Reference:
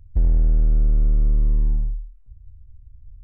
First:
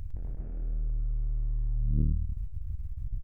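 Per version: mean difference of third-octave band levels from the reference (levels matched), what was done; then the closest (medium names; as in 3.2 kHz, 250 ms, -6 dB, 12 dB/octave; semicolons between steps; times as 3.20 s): 7.0 dB: bass shelf 350 Hz -6.5 dB; compressor with a negative ratio -35 dBFS, ratio -1; on a send: loudspeakers at several distances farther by 36 m -5 dB, 81 m -4 dB; on the sum: transformer saturation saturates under 130 Hz; trim +5 dB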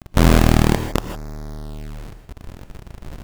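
13.5 dB: companded quantiser 2-bit; gated-style reverb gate 180 ms rising, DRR 7.5 dB; trim -3.5 dB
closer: first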